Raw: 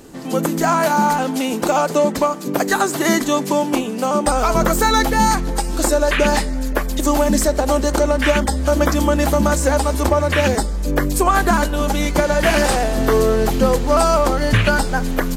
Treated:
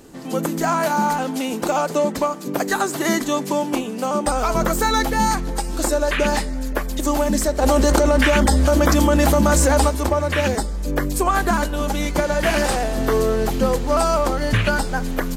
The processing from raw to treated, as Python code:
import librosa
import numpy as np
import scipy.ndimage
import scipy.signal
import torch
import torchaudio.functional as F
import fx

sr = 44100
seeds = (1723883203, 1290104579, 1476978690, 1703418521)

y = fx.env_flatten(x, sr, amount_pct=100, at=(7.61, 9.88), fade=0.02)
y = y * librosa.db_to_amplitude(-3.5)